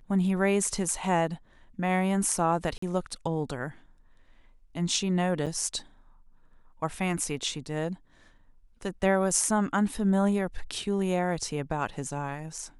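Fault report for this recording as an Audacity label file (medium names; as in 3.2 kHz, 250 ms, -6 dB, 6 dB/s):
2.780000	2.820000	dropout 44 ms
5.460000	5.470000	dropout 6.5 ms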